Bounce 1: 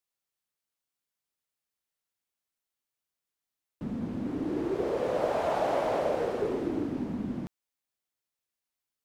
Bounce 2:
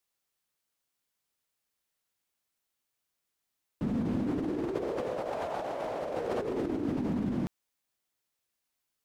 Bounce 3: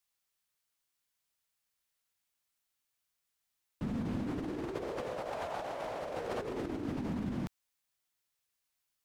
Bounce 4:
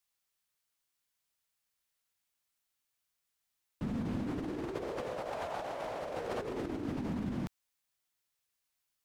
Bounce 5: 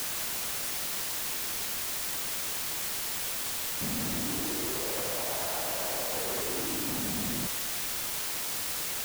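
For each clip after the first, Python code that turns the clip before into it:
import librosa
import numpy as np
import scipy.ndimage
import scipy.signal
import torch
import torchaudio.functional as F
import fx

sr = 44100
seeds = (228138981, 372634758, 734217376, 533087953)

y1 = fx.over_compress(x, sr, threshold_db=-34.0, ratio=-1.0)
y1 = F.gain(torch.from_numpy(y1), 1.5).numpy()
y2 = fx.peak_eq(y1, sr, hz=340.0, db=-6.5, octaves=2.5)
y3 = y2
y4 = np.clip(y3, -10.0 ** (-36.0 / 20.0), 10.0 ** (-36.0 / 20.0))
y4 = fx.quant_dither(y4, sr, seeds[0], bits=6, dither='triangular')
y4 = F.gain(torch.from_numpy(y4), 2.5).numpy()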